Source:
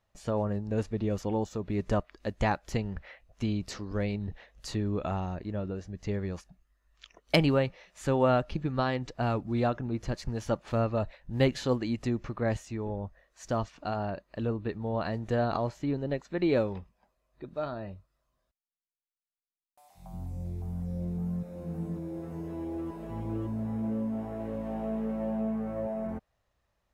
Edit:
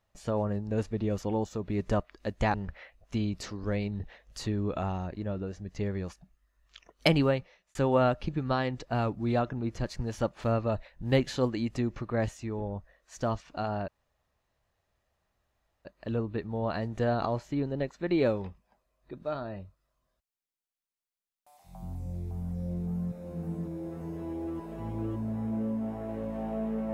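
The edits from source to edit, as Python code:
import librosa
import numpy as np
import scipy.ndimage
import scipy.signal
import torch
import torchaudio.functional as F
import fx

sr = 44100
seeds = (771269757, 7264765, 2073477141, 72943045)

y = fx.edit(x, sr, fx.cut(start_s=2.54, length_s=0.28),
    fx.fade_out_span(start_s=7.56, length_s=0.47),
    fx.insert_room_tone(at_s=14.16, length_s=1.97), tone=tone)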